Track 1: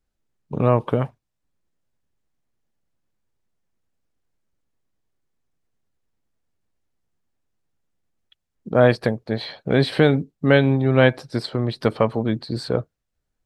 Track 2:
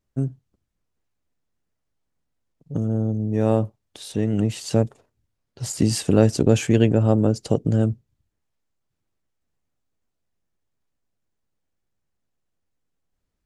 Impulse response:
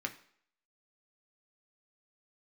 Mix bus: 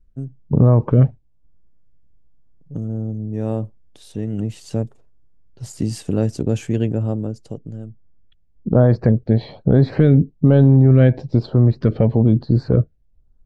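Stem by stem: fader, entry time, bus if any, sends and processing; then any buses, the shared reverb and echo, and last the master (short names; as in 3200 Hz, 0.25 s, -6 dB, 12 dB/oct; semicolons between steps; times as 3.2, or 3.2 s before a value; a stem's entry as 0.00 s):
+1.0 dB, 0.00 s, no send, steep low-pass 7500 Hz 96 dB/oct; tilt -4.5 dB/oct; LFO notch saw up 1.1 Hz 760–3700 Hz
-8.5 dB, 0.00 s, no send, low shelf 420 Hz +7.5 dB; auto duck -23 dB, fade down 1.65 s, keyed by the first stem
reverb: off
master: limiter -5 dBFS, peak gain reduction 8.5 dB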